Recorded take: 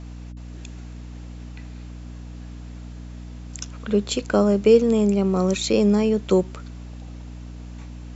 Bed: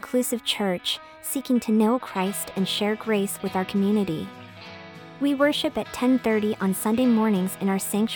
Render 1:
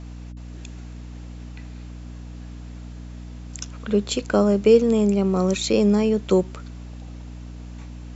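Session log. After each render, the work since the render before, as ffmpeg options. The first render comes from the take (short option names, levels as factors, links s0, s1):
-af anull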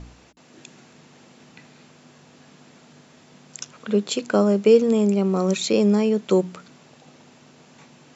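-af "bandreject=f=60:t=h:w=4,bandreject=f=120:t=h:w=4,bandreject=f=180:t=h:w=4,bandreject=f=240:t=h:w=4,bandreject=f=300:t=h:w=4"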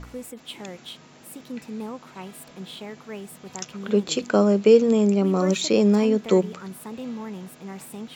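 -filter_complex "[1:a]volume=0.211[s0];[0:a][s0]amix=inputs=2:normalize=0"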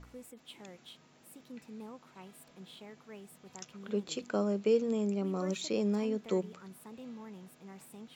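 -af "volume=0.224"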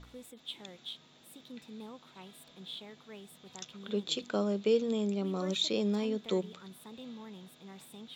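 -af "equalizer=f=3600:w=3.6:g=14.5"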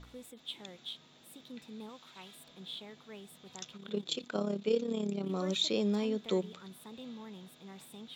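-filter_complex "[0:a]asettb=1/sr,asplit=3[s0][s1][s2];[s0]atrim=end=1.894[s3];[s1]atrim=start=1.89:end=2.35,asetpts=PTS-STARTPTS,afade=t=in:d=0.004:c=qsin,afade=t=out:st=0.456:d=0.004:c=qsin,tiltshelf=f=970:g=-4.5[s4];[s2]atrim=start=2.346[s5];[s3][s4]acrossfade=d=0.004:c1=hsin:c2=qsin[s6];[s6][s5]acrossfade=d=0.004:c1=qsin:c2=hsin,asettb=1/sr,asplit=3[s7][s8][s9];[s7]atrim=end=3.774[s10];[s8]atrim=start=3.77:end=5.3,asetpts=PTS-STARTPTS,afade=t=in:d=0.004:c=qsin,afade=t=out:st=1.526:d=0.004:c=qsin,tremolo=f=34:d=0.667[s11];[s9]atrim=start=5.296[s12];[s10][s11]acrossfade=d=0.004:c1=hsin:c2=qsin[s13];[s13][s12]acrossfade=d=0.004:c1=qsin:c2=hsin"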